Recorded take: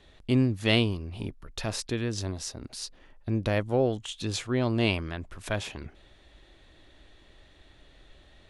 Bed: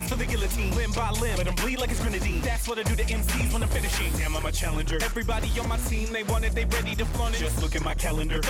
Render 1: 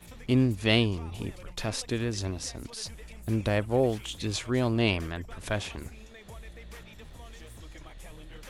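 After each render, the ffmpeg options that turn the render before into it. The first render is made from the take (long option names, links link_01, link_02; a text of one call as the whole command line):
ffmpeg -i in.wav -i bed.wav -filter_complex "[1:a]volume=-20.5dB[link_01];[0:a][link_01]amix=inputs=2:normalize=0" out.wav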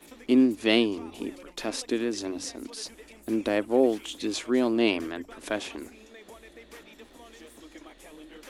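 ffmpeg -i in.wav -af "lowshelf=frequency=190:width_type=q:width=3:gain=-13.5,bandreject=frequency=93.23:width_type=h:width=4,bandreject=frequency=186.46:width_type=h:width=4,bandreject=frequency=279.69:width_type=h:width=4" out.wav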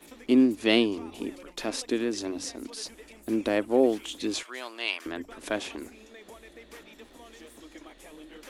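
ffmpeg -i in.wav -filter_complex "[0:a]asettb=1/sr,asplit=3[link_01][link_02][link_03];[link_01]atrim=end=4.434[link_04];[link_02]atrim=start=4.43:end=5.06,asetpts=PTS-STARTPTS,afade=type=in:duration=0.004:curve=qsin,afade=type=out:start_time=0.626:duration=0.004:curve=qsin,highpass=1200[link_05];[link_03]atrim=start=5.056[link_06];[link_04][link_05]acrossfade=duration=0.004:curve1=hsin:curve2=qsin[link_07];[link_07][link_06]acrossfade=duration=0.004:curve1=qsin:curve2=hsin" out.wav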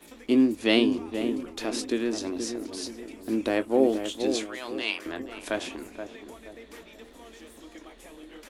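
ffmpeg -i in.wav -filter_complex "[0:a]asplit=2[link_01][link_02];[link_02]adelay=22,volume=-11.5dB[link_03];[link_01][link_03]amix=inputs=2:normalize=0,asplit=2[link_04][link_05];[link_05]adelay=477,lowpass=frequency=910:poles=1,volume=-6.5dB,asplit=2[link_06][link_07];[link_07]adelay=477,lowpass=frequency=910:poles=1,volume=0.42,asplit=2[link_08][link_09];[link_09]adelay=477,lowpass=frequency=910:poles=1,volume=0.42,asplit=2[link_10][link_11];[link_11]adelay=477,lowpass=frequency=910:poles=1,volume=0.42,asplit=2[link_12][link_13];[link_13]adelay=477,lowpass=frequency=910:poles=1,volume=0.42[link_14];[link_04][link_06][link_08][link_10][link_12][link_14]amix=inputs=6:normalize=0" out.wav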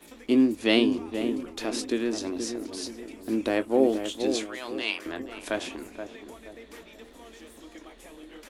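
ffmpeg -i in.wav -af anull out.wav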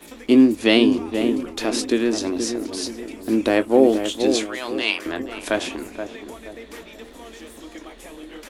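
ffmpeg -i in.wav -af "volume=7.5dB,alimiter=limit=-3dB:level=0:latency=1" out.wav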